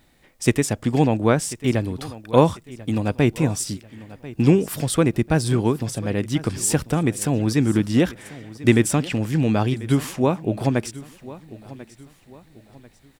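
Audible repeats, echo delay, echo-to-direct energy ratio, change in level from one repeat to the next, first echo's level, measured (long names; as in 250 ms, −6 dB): 3, 1,042 ms, −17.5 dB, −8.5 dB, −18.0 dB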